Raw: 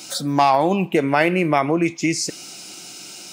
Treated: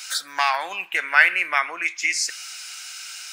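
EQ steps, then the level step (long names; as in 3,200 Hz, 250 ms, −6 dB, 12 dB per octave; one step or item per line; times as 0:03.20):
high-pass with resonance 1,600 Hz, resonance Q 3.1
0.0 dB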